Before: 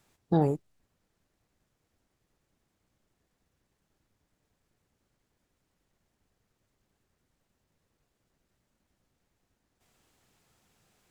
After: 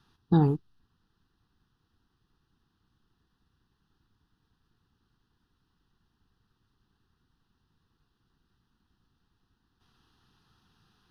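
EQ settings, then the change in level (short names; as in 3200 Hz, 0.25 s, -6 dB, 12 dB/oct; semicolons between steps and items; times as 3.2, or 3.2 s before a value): Bessel low-pass 6500 Hz; fixed phaser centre 2200 Hz, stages 6; +5.5 dB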